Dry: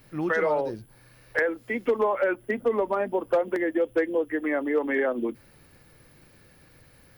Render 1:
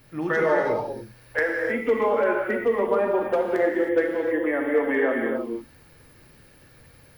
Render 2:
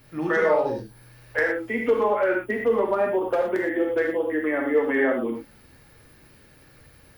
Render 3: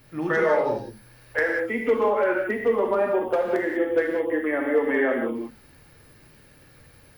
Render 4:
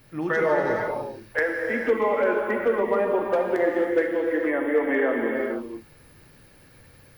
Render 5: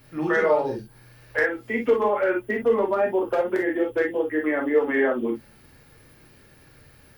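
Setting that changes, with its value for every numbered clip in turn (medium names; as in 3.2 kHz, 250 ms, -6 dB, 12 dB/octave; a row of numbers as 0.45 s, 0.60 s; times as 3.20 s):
gated-style reverb, gate: 340 ms, 140 ms, 220 ms, 520 ms, 80 ms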